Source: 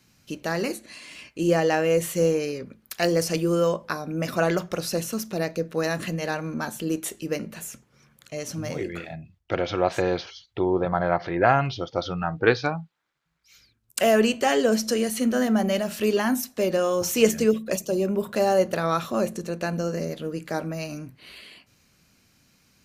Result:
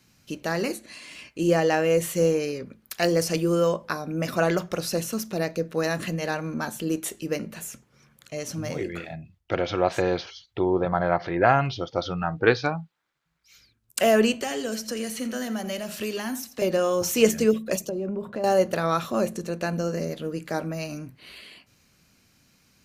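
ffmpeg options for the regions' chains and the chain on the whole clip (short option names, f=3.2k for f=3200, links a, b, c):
-filter_complex "[0:a]asettb=1/sr,asplit=3[a][b][c];[a]atrim=end=14.424[d];[b]atrim=start=14.42:end=16.62,asetpts=PTS-STARTPTS,afade=t=in:d=0.004:c=qsin,afade=t=out:st=2.196:d=0.004:c=qsin,acrossover=split=200|950|2200|7000[e][f][g][h][i];[e]acompressor=threshold=-40dB:ratio=3[j];[f]acompressor=threshold=-34dB:ratio=3[k];[g]acompressor=threshold=-44dB:ratio=3[l];[h]acompressor=threshold=-38dB:ratio=3[m];[i]acompressor=threshold=-40dB:ratio=3[n];[j][k][l][m][n]amix=inputs=5:normalize=0,aecho=1:1:85:0.211,atrim=end_sample=97020[o];[c]atrim=start=16.616[p];[d][o]acrossfade=d=0.004:c1=hsin:c2=qsin[q];[q][p]acrossfade=d=0.004:c1=qsin:c2=hsin,asettb=1/sr,asplit=3[r][s][t];[r]atrim=end=17.894[u];[s]atrim=start=17.89:end=18.44,asetpts=PTS-STARTPTS,afade=t=in:d=0.004:c=qsin,afade=t=out:st=0.546:d=0.004:c=qsin,lowpass=f=1.1k:p=1,acompressor=threshold=-26dB:ratio=5:attack=3.2:release=140:knee=1:detection=peak[v];[t]atrim=start=18.436[w];[u][v]acrossfade=d=0.004:c1=hsin:c2=qsin[x];[x][w]acrossfade=d=0.004:c1=qsin:c2=hsin"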